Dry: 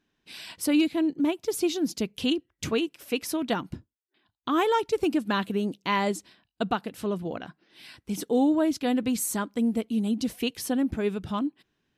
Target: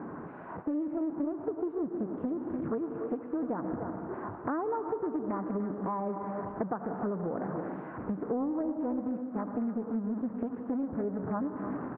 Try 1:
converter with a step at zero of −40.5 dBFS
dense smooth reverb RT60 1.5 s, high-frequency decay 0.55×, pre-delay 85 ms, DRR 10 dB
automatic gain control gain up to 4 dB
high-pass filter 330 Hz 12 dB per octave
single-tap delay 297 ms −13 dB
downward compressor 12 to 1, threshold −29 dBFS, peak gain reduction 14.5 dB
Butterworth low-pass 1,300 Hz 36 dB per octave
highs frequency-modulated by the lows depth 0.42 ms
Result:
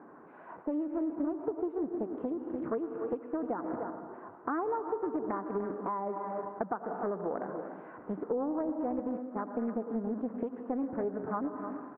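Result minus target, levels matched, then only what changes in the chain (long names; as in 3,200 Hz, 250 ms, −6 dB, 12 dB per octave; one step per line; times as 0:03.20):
125 Hz band −6.5 dB; converter with a step at zero: distortion −8 dB
change: converter with a step at zero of −31.5 dBFS
change: high-pass filter 150 Hz 12 dB per octave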